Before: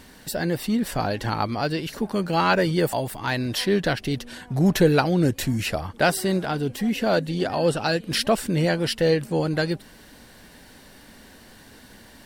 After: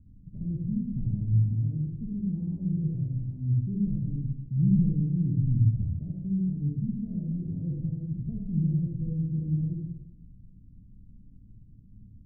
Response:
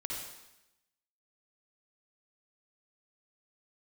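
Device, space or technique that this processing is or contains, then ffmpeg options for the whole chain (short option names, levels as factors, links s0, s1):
club heard from the street: -filter_complex "[0:a]alimiter=limit=0.266:level=0:latency=1:release=412,lowpass=f=170:w=0.5412,lowpass=f=170:w=1.3066[s0];[1:a]atrim=start_sample=2205[s1];[s0][s1]afir=irnorm=-1:irlink=0,volume=1.26"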